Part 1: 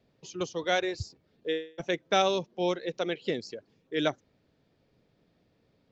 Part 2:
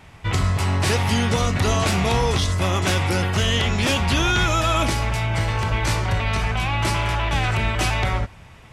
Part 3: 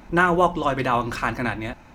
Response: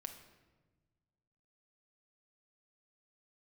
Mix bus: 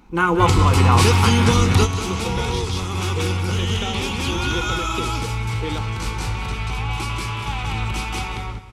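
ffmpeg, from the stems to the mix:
-filter_complex "[0:a]acompressor=threshold=-32dB:ratio=6,adelay=1700,volume=-4dB[link_01];[1:a]adelay=150,volume=-4.5dB,asplit=2[link_02][link_03];[link_03]volume=-12dB[link_04];[2:a]volume=-6dB,asplit=3[link_05][link_06][link_07];[link_06]volume=-13dB[link_08];[link_07]apad=whole_len=391444[link_09];[link_02][link_09]sidechaingate=range=-12dB:threshold=-49dB:ratio=16:detection=peak[link_10];[link_04][link_08]amix=inputs=2:normalize=0,aecho=0:1:185|370|555:1|0.2|0.04[link_11];[link_01][link_10][link_05][link_11]amix=inputs=4:normalize=0,superequalizer=8b=0.282:11b=0.447,dynaudnorm=framelen=190:gausssize=3:maxgain=10.5dB"

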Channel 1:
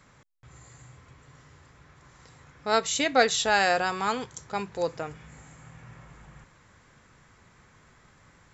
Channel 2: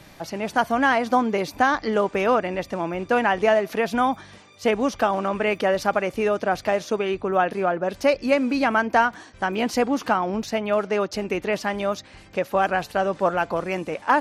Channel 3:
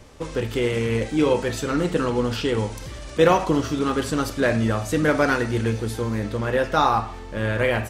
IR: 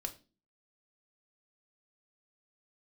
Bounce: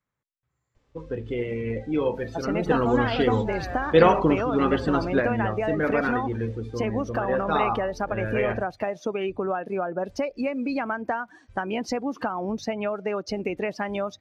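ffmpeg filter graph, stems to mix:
-filter_complex "[0:a]highshelf=frequency=4900:gain=-7,volume=-11.5dB,asplit=2[link_01][link_02];[1:a]acompressor=threshold=-25dB:ratio=16,adelay=2150,volume=1.5dB[link_03];[2:a]lowpass=4900,adelay=750,volume=-1.5dB,asplit=2[link_04][link_05];[link_05]volume=-12.5dB[link_06];[link_02]apad=whole_len=381088[link_07];[link_04][link_07]sidechaingate=range=-7dB:threshold=-56dB:ratio=16:detection=peak[link_08];[3:a]atrim=start_sample=2205[link_09];[link_06][link_09]afir=irnorm=-1:irlink=0[link_10];[link_01][link_03][link_08][link_10]amix=inputs=4:normalize=0,afftdn=noise_reduction=16:noise_floor=-34"

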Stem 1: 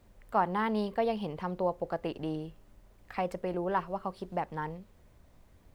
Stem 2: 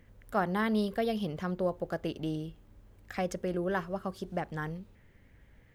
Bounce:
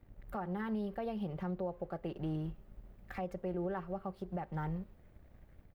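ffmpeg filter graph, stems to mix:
ffmpeg -i stem1.wav -i stem2.wav -filter_complex "[0:a]bandreject=frequency=1000:width=7,dynaudnorm=framelen=560:gausssize=3:maxgain=4dB,volume=-5.5dB,asplit=2[link_01][link_02];[1:a]lowshelf=frequency=130:gain=9,bandreject=frequency=262:width_type=h:width=4,bandreject=frequency=524:width_type=h:width=4,bandreject=frequency=786:width_type=h:width=4,bandreject=frequency=1048:width_type=h:width=4,bandreject=frequency=1310:width_type=h:width=4,bandreject=frequency=1572:width_type=h:width=4,bandreject=frequency=1834:width_type=h:width=4,bandreject=frequency=2096:width_type=h:width=4,bandreject=frequency=2358:width_type=h:width=4,bandreject=frequency=2620:width_type=h:width=4,bandreject=frequency=2882:width_type=h:width=4,bandreject=frequency=3144:width_type=h:width=4,bandreject=frequency=3406:width_type=h:width=4,bandreject=frequency=3668:width_type=h:width=4,bandreject=frequency=3930:width_type=h:width=4,bandreject=frequency=4192:width_type=h:width=4,bandreject=frequency=4454:width_type=h:width=4,bandreject=frequency=4716:width_type=h:width=4,bandreject=frequency=4978:width_type=h:width=4,bandreject=frequency=5240:width_type=h:width=4,bandreject=frequency=5502:width_type=h:width=4,bandreject=frequency=5764:width_type=h:width=4,bandreject=frequency=6026:width_type=h:width=4,bandreject=frequency=6288:width_type=h:width=4,bandreject=frequency=6550:width_type=h:width=4,bandreject=frequency=6812:width_type=h:width=4,bandreject=frequency=7074:width_type=h:width=4,bandreject=frequency=7336:width_type=h:width=4,bandreject=frequency=7598:width_type=h:width=4,aeval=exprs='sgn(val(0))*max(abs(val(0))-0.00299,0)':channel_layout=same,adelay=4.8,volume=-1dB[link_03];[link_02]apad=whole_len=253526[link_04];[link_03][link_04]sidechaincompress=threshold=-35dB:ratio=8:attack=16:release=966[link_05];[link_01][link_05]amix=inputs=2:normalize=0,equalizer=frequency=6700:width=0.48:gain=-11.5,alimiter=level_in=5dB:limit=-24dB:level=0:latency=1:release=205,volume=-5dB" out.wav

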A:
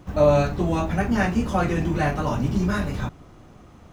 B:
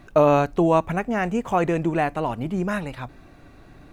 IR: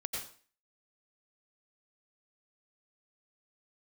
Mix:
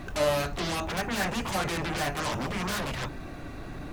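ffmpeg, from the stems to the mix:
-filter_complex "[0:a]lowshelf=frequency=450:gain=-8,volume=-5.5dB[link_01];[1:a]alimiter=limit=-16.5dB:level=0:latency=1:release=302,aeval=exprs='0.15*sin(PI/2*8.91*val(0)/0.15)':channel_layout=same,volume=-1,volume=-14dB[link_02];[link_01][link_02]amix=inputs=2:normalize=0"

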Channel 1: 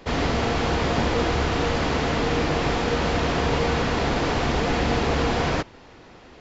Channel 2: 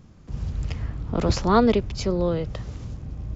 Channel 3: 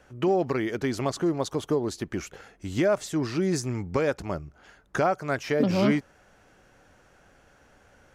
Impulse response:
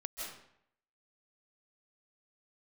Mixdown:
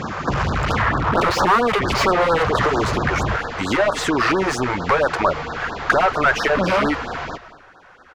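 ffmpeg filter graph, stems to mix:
-filter_complex "[0:a]adelay=1750,volume=-11.5dB,asplit=2[link_01][link_02];[link_02]volume=-10dB[link_03];[1:a]volume=-2dB,asplit=2[link_04][link_05];[2:a]agate=range=-15dB:threshold=-53dB:ratio=16:detection=peak,adelay=950,volume=-13dB[link_06];[link_05]apad=whole_len=400920[link_07];[link_06][link_07]sidechaincompress=threshold=-25dB:ratio=8:attack=6.1:release=214[link_08];[link_04][link_08]amix=inputs=2:normalize=0,asplit=2[link_09][link_10];[link_10]highpass=frequency=720:poles=1,volume=41dB,asoftclip=type=tanh:threshold=-7dB[link_11];[link_09][link_11]amix=inputs=2:normalize=0,lowpass=frequency=1900:poles=1,volume=-6dB,acompressor=threshold=-20dB:ratio=6,volume=0dB[link_12];[3:a]atrim=start_sample=2205[link_13];[link_03][link_13]afir=irnorm=-1:irlink=0[link_14];[link_01][link_12][link_14]amix=inputs=3:normalize=0,equalizer=frequency=1300:width_type=o:width=1.9:gain=11,afftfilt=real='re*(1-between(b*sr/1024,210*pow(2600/210,0.5+0.5*sin(2*PI*4.4*pts/sr))/1.41,210*pow(2600/210,0.5+0.5*sin(2*PI*4.4*pts/sr))*1.41))':imag='im*(1-between(b*sr/1024,210*pow(2600/210,0.5+0.5*sin(2*PI*4.4*pts/sr))/1.41,210*pow(2600/210,0.5+0.5*sin(2*PI*4.4*pts/sr))*1.41))':win_size=1024:overlap=0.75"

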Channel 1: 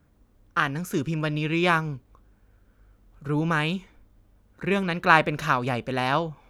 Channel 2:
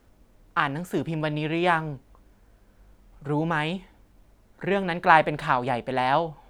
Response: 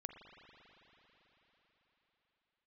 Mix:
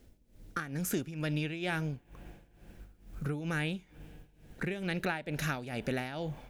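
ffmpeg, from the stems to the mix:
-filter_complex "[0:a]highshelf=frequency=5500:gain=9,acrossover=split=1100|2200[link_01][link_02][link_03];[link_01]acompressor=threshold=-36dB:ratio=4[link_04];[link_02]acompressor=threshold=-42dB:ratio=4[link_05];[link_03]acompressor=threshold=-34dB:ratio=4[link_06];[link_04][link_05][link_06]amix=inputs=3:normalize=0,volume=1dB[link_07];[1:a]equalizer=frequency=1100:width_type=o:width=1.1:gain=-15,volume=1dB,asplit=3[link_08][link_09][link_10];[link_09]volume=-16.5dB[link_11];[link_10]apad=whole_len=286489[link_12];[link_07][link_12]sidechaingate=range=-33dB:threshold=-52dB:ratio=16:detection=peak[link_13];[2:a]atrim=start_sample=2205[link_14];[link_11][link_14]afir=irnorm=-1:irlink=0[link_15];[link_13][link_08][link_15]amix=inputs=3:normalize=0,dynaudnorm=framelen=160:gausssize=5:maxgain=3dB,tremolo=f=2.2:d=0.83,acompressor=threshold=-34dB:ratio=2.5"

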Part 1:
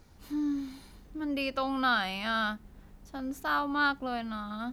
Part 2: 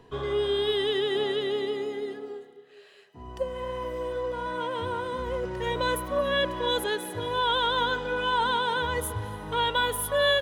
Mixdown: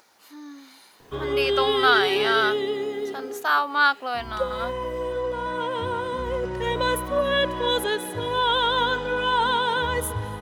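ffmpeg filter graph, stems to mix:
ffmpeg -i stem1.wav -i stem2.wav -filter_complex "[0:a]highpass=640,acompressor=mode=upward:threshold=-55dB:ratio=2.5,volume=2dB[link_01];[1:a]adelay=1000,volume=-3.5dB[link_02];[link_01][link_02]amix=inputs=2:normalize=0,dynaudnorm=framelen=400:gausssize=5:maxgain=7dB" out.wav

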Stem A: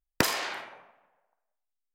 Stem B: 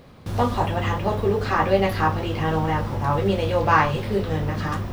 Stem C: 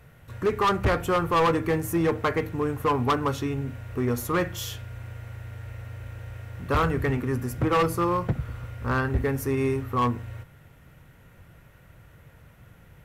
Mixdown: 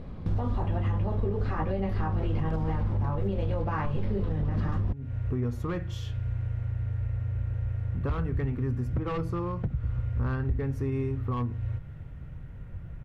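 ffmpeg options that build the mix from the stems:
ffmpeg -i stem1.wav -i stem2.wav -i stem3.wav -filter_complex "[0:a]acompressor=threshold=-35dB:ratio=6,adelay=2300,volume=-11.5dB[link_01];[1:a]flanger=delay=4.5:depth=5.4:regen=79:speed=0.51:shape=triangular,equalizer=frequency=120:width=6.3:gain=-9.5,acompressor=threshold=-38dB:ratio=2,volume=2.5dB,asplit=2[link_02][link_03];[2:a]adynamicequalizer=threshold=0.00794:dfrequency=4100:dqfactor=0.75:tfrequency=4100:tqfactor=0.75:attack=5:release=100:ratio=0.375:range=2.5:mode=boostabove:tftype=bell,acompressor=threshold=-40dB:ratio=2,adelay=1350,volume=-2dB[link_04];[link_03]apad=whole_len=634875[link_05];[link_04][link_05]sidechaincompress=threshold=-46dB:ratio=12:attack=23:release=245[link_06];[link_01][link_02][link_06]amix=inputs=3:normalize=0,aemphasis=mode=reproduction:type=riaa,alimiter=limit=-20dB:level=0:latency=1:release=91" out.wav

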